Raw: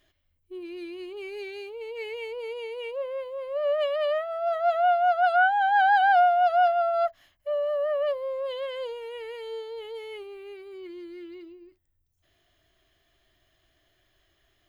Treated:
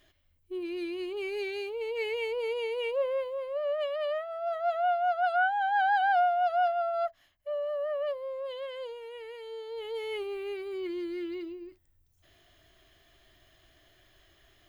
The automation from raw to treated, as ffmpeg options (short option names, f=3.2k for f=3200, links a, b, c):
-af "volume=14.5dB,afade=t=out:st=3.1:d=0.56:silence=0.375837,afade=t=in:st=9.57:d=0.75:silence=0.266073"